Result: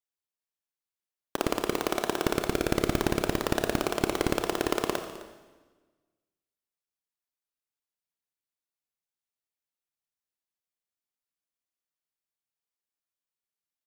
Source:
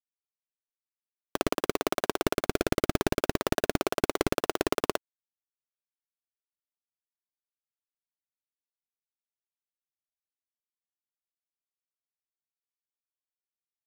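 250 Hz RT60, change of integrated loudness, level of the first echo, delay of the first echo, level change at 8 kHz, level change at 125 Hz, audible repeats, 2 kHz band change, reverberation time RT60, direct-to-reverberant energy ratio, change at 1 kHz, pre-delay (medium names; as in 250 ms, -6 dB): 1.4 s, +0.5 dB, -18.0 dB, 259 ms, +0.5 dB, +1.0 dB, 1, +0.5 dB, 1.3 s, 7.0 dB, +0.5 dB, 26 ms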